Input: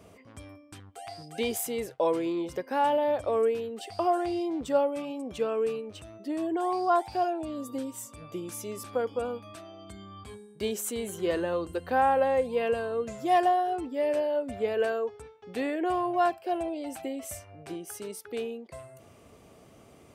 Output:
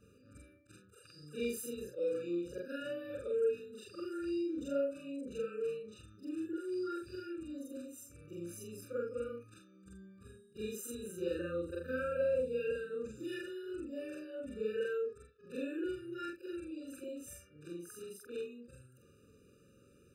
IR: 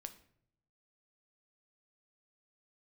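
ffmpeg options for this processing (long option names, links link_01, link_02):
-af "afftfilt=real='re':imag='-im':win_size=4096:overlap=0.75,afftfilt=real='re*eq(mod(floor(b*sr/1024/590),2),0)':imag='im*eq(mod(floor(b*sr/1024/590),2),0)':win_size=1024:overlap=0.75,volume=-3.5dB"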